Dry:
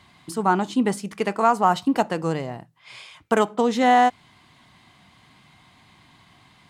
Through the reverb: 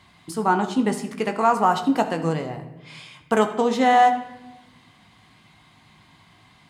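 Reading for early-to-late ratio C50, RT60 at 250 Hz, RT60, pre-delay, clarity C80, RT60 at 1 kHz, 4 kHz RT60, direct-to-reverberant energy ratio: 10.0 dB, 1.6 s, 1.0 s, 19 ms, 12.5 dB, 0.85 s, 0.70 s, 6.0 dB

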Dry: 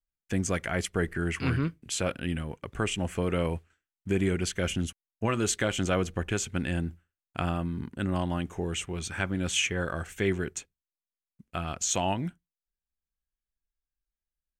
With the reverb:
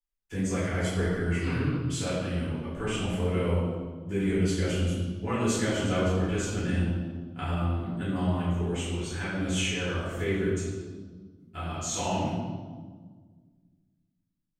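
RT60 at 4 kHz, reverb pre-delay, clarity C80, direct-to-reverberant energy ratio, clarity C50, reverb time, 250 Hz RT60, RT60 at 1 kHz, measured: 1.2 s, 3 ms, 1.0 dB, −12.5 dB, −1.5 dB, 1.5 s, 2.3 s, 1.4 s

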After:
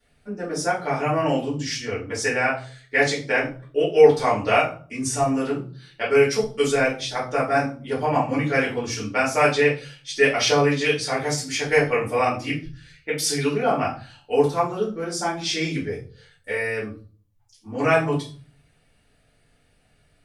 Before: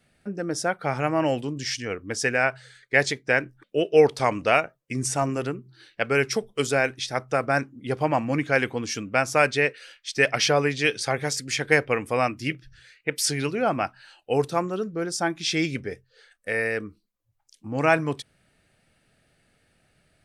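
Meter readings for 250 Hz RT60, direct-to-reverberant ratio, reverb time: 0.55 s, −9.0 dB, 0.40 s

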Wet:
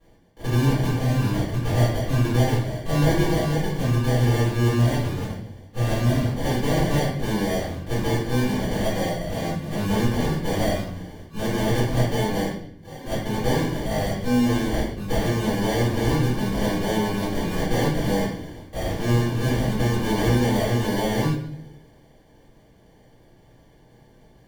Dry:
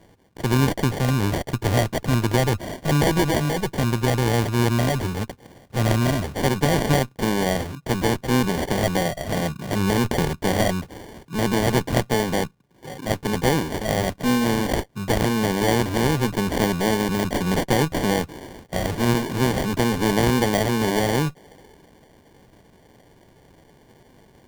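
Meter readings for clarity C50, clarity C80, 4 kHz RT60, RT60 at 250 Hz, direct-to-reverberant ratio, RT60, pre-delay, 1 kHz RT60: 2.0 dB, 6.0 dB, 0.60 s, 1.0 s, −13.5 dB, 0.70 s, 4 ms, 0.60 s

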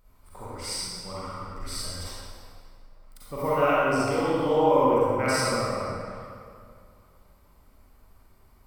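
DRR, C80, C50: −10.0 dB, −3.5 dB, −7.0 dB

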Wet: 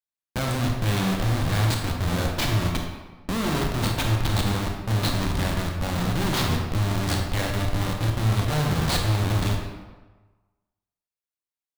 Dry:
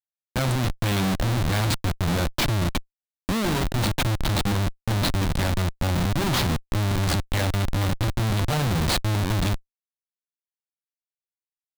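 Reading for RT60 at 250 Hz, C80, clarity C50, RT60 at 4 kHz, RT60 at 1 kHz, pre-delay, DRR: 1.2 s, 5.0 dB, 3.0 dB, 0.85 s, 1.3 s, 22 ms, 1.0 dB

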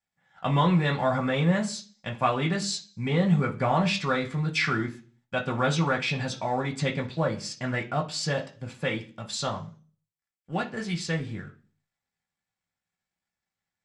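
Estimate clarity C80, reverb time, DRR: 19.5 dB, 0.40 s, −1.0 dB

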